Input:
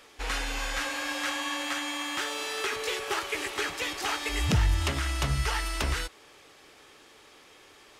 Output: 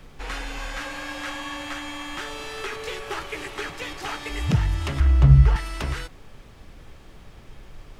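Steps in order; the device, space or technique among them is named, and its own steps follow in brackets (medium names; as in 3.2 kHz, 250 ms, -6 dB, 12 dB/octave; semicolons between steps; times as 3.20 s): 5.00–5.56 s: tilt EQ -3.5 dB/octave; car interior (peaking EQ 140 Hz +8 dB 0.77 oct; treble shelf 3.7 kHz -7 dB; brown noise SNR 19 dB)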